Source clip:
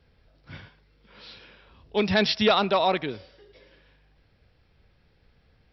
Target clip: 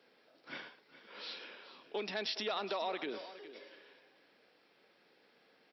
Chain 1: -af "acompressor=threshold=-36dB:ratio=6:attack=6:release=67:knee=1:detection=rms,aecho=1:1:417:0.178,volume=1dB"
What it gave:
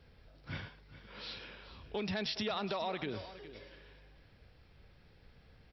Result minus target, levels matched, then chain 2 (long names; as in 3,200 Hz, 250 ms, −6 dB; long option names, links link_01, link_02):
250 Hz band +6.0 dB
-af "acompressor=threshold=-36dB:ratio=6:attack=6:release=67:knee=1:detection=rms,highpass=frequency=270:width=0.5412,highpass=frequency=270:width=1.3066,aecho=1:1:417:0.178,volume=1dB"